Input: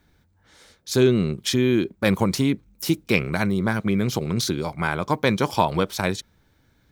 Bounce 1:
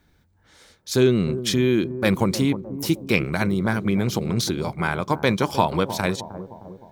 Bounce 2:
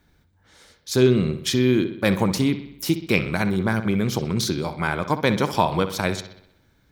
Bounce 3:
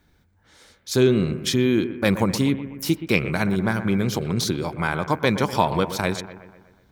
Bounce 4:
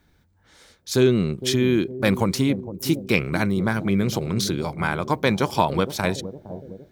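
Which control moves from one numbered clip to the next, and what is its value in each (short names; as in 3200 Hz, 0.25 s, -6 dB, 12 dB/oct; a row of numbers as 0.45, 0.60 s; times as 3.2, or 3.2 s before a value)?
analogue delay, time: 308, 63, 123, 461 ms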